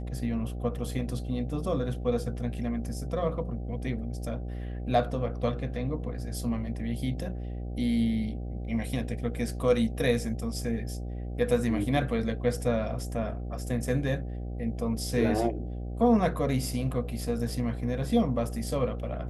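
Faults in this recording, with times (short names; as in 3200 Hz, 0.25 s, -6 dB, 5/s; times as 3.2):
buzz 60 Hz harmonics 13 -35 dBFS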